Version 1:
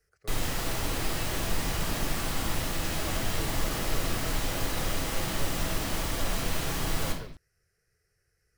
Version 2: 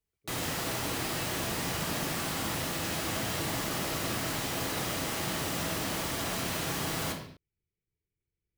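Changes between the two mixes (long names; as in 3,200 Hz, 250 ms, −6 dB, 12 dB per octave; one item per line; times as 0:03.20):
speech: add formant resonators in series i
background: add high-pass filter 110 Hz 12 dB per octave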